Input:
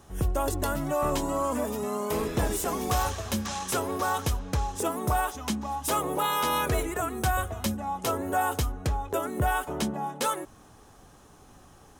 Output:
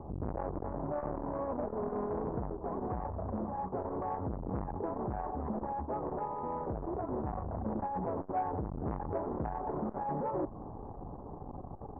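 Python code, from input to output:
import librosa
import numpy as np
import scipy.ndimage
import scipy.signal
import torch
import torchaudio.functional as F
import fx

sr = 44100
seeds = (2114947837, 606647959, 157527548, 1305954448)

p1 = fx.fold_sine(x, sr, drive_db=19, ceiling_db=-17.0)
p2 = x + (p1 * librosa.db_to_amplitude(-10.0))
p3 = fx.rider(p2, sr, range_db=3, speed_s=0.5)
p4 = scipy.signal.sosfilt(scipy.signal.butter(8, 1000.0, 'lowpass', fs=sr, output='sos'), p3)
p5 = fx.transformer_sat(p4, sr, knee_hz=440.0)
y = p5 * librosa.db_to_amplitude(-5.0)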